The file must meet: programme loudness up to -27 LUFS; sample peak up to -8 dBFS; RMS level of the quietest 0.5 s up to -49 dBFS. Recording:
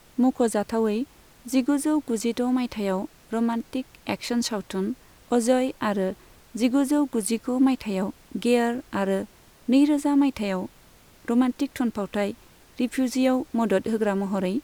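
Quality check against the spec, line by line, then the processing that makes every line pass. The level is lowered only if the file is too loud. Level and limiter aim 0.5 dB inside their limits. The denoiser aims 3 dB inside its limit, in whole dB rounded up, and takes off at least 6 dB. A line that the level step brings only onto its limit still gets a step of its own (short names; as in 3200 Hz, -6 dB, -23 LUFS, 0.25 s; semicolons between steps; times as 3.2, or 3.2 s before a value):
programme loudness -25.0 LUFS: fail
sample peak -9.5 dBFS: OK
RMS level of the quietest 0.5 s -53 dBFS: OK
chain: gain -2.5 dB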